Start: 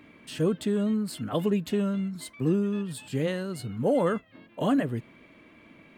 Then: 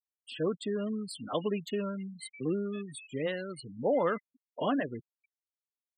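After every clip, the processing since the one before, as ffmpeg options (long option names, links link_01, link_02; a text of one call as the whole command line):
ffmpeg -i in.wav -af "highpass=frequency=530:poles=1,afftfilt=real='re*gte(hypot(re,im),0.0178)':imag='im*gte(hypot(re,im),0.0178)':win_size=1024:overlap=0.75" out.wav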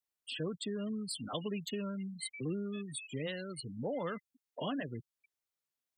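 ffmpeg -i in.wav -filter_complex "[0:a]acrossover=split=150|3000[link_01][link_02][link_03];[link_02]acompressor=threshold=-51dB:ratio=2[link_04];[link_01][link_04][link_03]amix=inputs=3:normalize=0,volume=3.5dB" out.wav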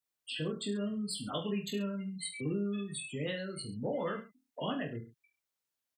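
ffmpeg -i in.wav -af "aecho=1:1:20|43|69.45|99.87|134.8:0.631|0.398|0.251|0.158|0.1" out.wav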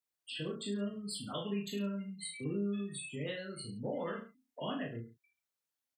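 ffmpeg -i in.wav -filter_complex "[0:a]asplit=2[link_01][link_02];[link_02]adelay=35,volume=-5dB[link_03];[link_01][link_03]amix=inputs=2:normalize=0,volume=-4dB" out.wav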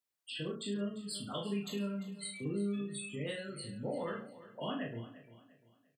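ffmpeg -i in.wav -af "aecho=1:1:347|694|1041:0.158|0.0555|0.0194" out.wav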